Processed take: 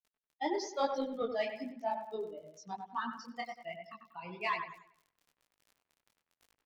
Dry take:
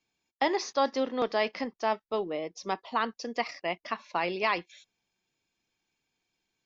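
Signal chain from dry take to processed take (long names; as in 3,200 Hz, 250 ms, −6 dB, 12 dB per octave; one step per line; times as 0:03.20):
spectral dynamics exaggerated over time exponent 3
amplitude modulation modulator 58 Hz, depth 15%
surface crackle 18 per second −47 dBFS
0:03.74–0:04.40: phaser swept by the level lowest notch 330 Hz, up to 1,800 Hz, full sweep at −46 dBFS
in parallel at −8 dB: soft clipping −30.5 dBFS, distortion −11 dB
0:02.67–0:03.07: on the sum: high-frequency loss of the air 86 metres
on a send: delay with a low-pass on its return 95 ms, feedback 36%, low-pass 2,400 Hz, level −6 dB
on the sum: micro pitch shift up and down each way 37 cents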